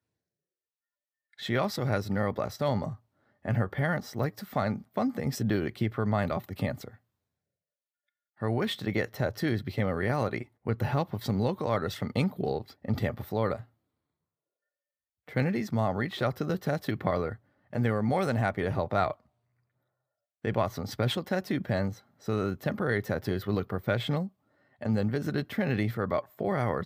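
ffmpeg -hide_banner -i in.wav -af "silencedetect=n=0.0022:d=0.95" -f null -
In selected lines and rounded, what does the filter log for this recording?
silence_start: 0.00
silence_end: 1.33 | silence_duration: 1.33
silence_start: 6.96
silence_end: 8.38 | silence_duration: 1.42
silence_start: 13.66
silence_end: 15.28 | silence_duration: 1.62
silence_start: 19.20
silence_end: 20.44 | silence_duration: 1.24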